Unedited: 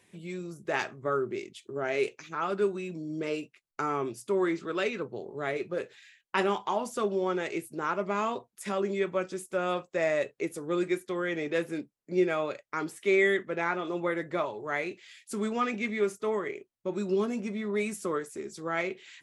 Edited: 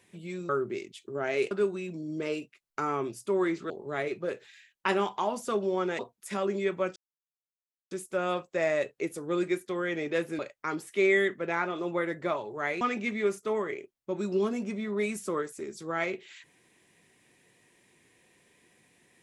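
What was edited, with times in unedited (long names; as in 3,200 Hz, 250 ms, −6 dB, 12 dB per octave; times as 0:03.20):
0:00.49–0:01.10: remove
0:02.12–0:02.52: remove
0:04.71–0:05.19: remove
0:07.48–0:08.34: remove
0:09.31: splice in silence 0.95 s
0:11.79–0:12.48: remove
0:14.90–0:15.58: remove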